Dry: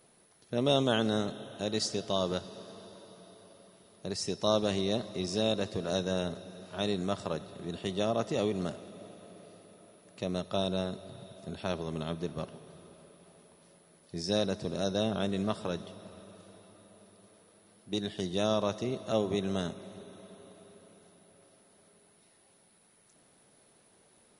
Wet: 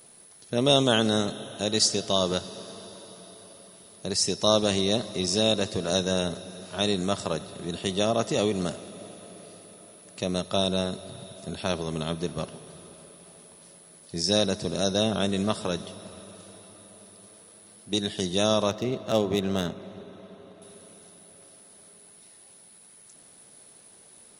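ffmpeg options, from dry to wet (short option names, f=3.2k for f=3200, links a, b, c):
-filter_complex "[0:a]asettb=1/sr,asplit=3[a][b][c];[a]atrim=end=18.704[d];[b]atrim=start=18.7:end=20.62,asetpts=PTS-STARTPTS,afade=t=in:d=0.004:c=qsin,afade=t=out:st=1.916:d=0.004:c=qsin,adynamicsmooth=sensitivity=7:basefreq=3.1k[e];[c]atrim=start=20.616[f];[d][e]acrossfade=d=0.004:c1=hsin:c2=qsin[g];[g][f]acrossfade=d=0.004:c1=qsin:c2=hsin,highshelf=f=4.4k:g=10.5,volume=5dB"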